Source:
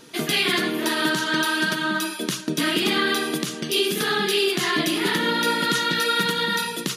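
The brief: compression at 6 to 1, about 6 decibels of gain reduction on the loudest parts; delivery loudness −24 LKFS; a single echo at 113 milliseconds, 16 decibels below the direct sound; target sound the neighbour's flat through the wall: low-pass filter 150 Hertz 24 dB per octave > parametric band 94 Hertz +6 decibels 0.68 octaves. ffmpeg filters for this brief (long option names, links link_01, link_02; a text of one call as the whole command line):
ffmpeg -i in.wav -af "acompressor=threshold=-24dB:ratio=6,lowpass=frequency=150:width=0.5412,lowpass=frequency=150:width=1.3066,equalizer=frequency=94:width_type=o:width=0.68:gain=6,aecho=1:1:113:0.158,volume=23dB" out.wav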